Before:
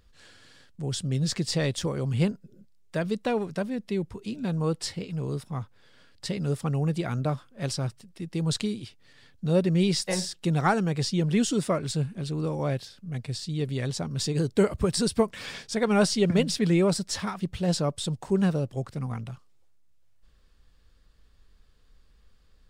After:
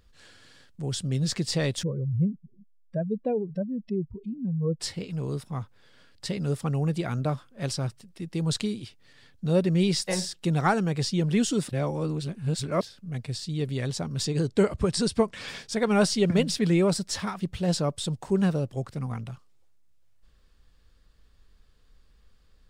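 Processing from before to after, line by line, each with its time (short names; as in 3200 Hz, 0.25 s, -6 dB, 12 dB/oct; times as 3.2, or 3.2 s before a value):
1.83–4.8 spectral contrast raised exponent 2.3
11.69–12.81 reverse
14.25–15.48 LPF 9100 Hz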